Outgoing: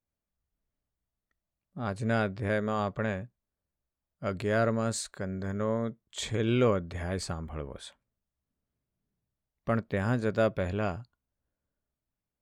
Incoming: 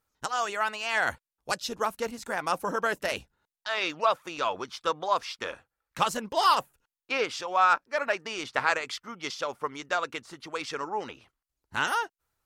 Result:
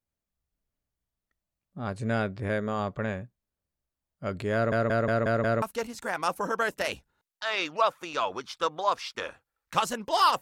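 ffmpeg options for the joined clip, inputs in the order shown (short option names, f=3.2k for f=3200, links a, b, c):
-filter_complex "[0:a]apad=whole_dur=10.41,atrim=end=10.41,asplit=6[a][b][c][d][e][f];[a]atrim=end=4.722[g];[b]atrim=start=4.538:end=4.722[h];[c]atrim=start=4.538:end=4.722[i];[d]atrim=start=4.538:end=4.722[j];[e]atrim=start=4.538:end=4.722[k];[f]atrim=start=4.538:end=4.722[l];[1:a]atrim=start=1.858:end=6.65[m];[g][h]acrossfade=d=0.004:c1=hsin:c2=hsin[n];[n][i]acrossfade=d=0.004:c1=hsin:c2=hsin[o];[o][j]acrossfade=d=0.004:c1=hsin:c2=hsin[p];[p][k]acrossfade=d=0.004:c1=hsin:c2=hsin[q];[q][l]acrossfade=d=0.004:c1=hsin:c2=hsin[r];[r][m]acrossfade=d=0.004:c1=hsin:c2=hsin"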